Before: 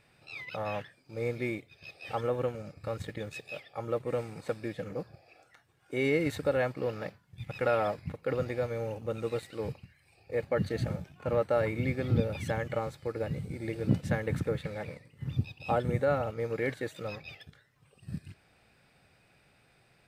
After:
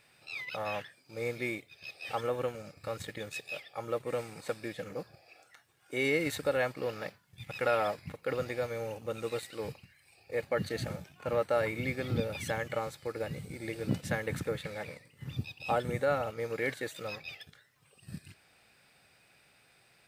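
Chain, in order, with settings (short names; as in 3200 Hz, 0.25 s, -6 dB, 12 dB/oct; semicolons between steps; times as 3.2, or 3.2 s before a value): tilt +2 dB/oct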